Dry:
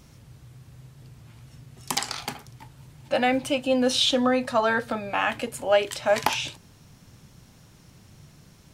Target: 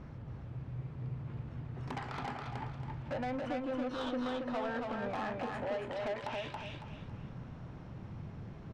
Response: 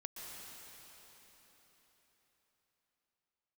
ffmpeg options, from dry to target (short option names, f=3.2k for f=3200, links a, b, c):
-filter_complex "[0:a]asplit=2[a][b];[b]acrusher=samples=11:mix=1:aa=0.000001:lfo=1:lforange=17.6:lforate=0.28,volume=-5dB[c];[a][c]amix=inputs=2:normalize=0,acompressor=threshold=-32dB:ratio=6,lowpass=1.8k,asoftclip=type=tanh:threshold=-34dB,aecho=1:1:277|554|831|1108:0.708|0.227|0.0725|0.0232,volume=1dB"